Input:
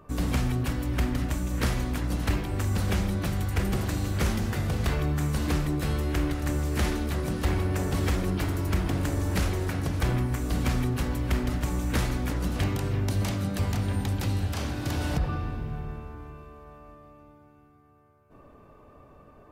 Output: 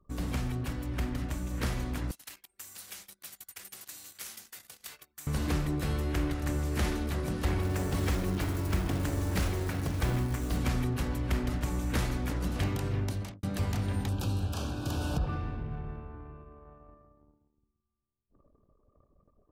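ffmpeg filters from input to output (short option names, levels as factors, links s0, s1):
-filter_complex "[0:a]asettb=1/sr,asplit=3[s0][s1][s2];[s0]atrim=end=2.114[s3];[s1]atrim=start=2.11:end=5.27,asetpts=PTS-STARTPTS,afade=t=in:d=0.004:c=qsin,afade=t=out:st=3.156:d=0.004:c=qsin,aderivative[s4];[s2]atrim=start=5.266[s5];[s3][s4]acrossfade=d=0.004:c1=hsin:c2=qsin[s6];[s6][s5]acrossfade=d=0.004:c1=qsin:c2=hsin,asettb=1/sr,asplit=3[s7][s8][s9];[s7]atrim=end=7.624[s10];[s8]atrim=start=7.62:end=10.58,asetpts=PTS-STARTPTS,afade=t=in:d=0.004:c=qsin,afade=t=out:st=2.956:d=0.004:c=qsin,acrusher=bits=5:mode=log:mix=0:aa=0.000001[s11];[s9]atrim=start=10.576[s12];[s10][s11]acrossfade=d=0.004:c1=hsin:c2=qsin[s13];[s13][s12]acrossfade=d=0.004:c1=qsin:c2=hsin,asettb=1/sr,asplit=3[s14][s15][s16];[s14]atrim=end=14.094[s17];[s15]atrim=start=14.09:end=15.27,asetpts=PTS-STARTPTS,afade=t=in:d=0.004:c=qsin,afade=t=out:st=1.176:d=0.004:c=qsin,asuperstop=centerf=2000:order=4:qfactor=2.2[s18];[s16]atrim=start=15.266[s19];[s17][s18]acrossfade=d=0.004:c1=hsin:c2=qsin[s20];[s20][s19]acrossfade=d=0.004:c1=qsin:c2=hsin,asplit=2[s21][s22];[s21]atrim=end=13.43,asetpts=PTS-STARTPTS,afade=t=out:st=13:d=0.43[s23];[s22]atrim=start=13.43,asetpts=PTS-STARTPTS,afade=t=in:d=0.004:c=hsin[s24];[s23][s24]concat=n=2:v=0:a=1,anlmdn=0.0251,dynaudnorm=f=130:g=31:m=1.41,volume=0.473"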